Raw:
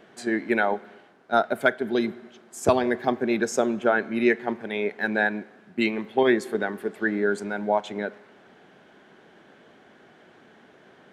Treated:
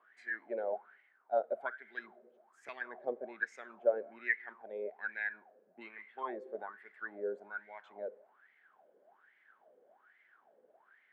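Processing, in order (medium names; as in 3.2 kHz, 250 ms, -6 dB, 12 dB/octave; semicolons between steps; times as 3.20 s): wah-wah 1.2 Hz 490–2100 Hz, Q 12; trim +1 dB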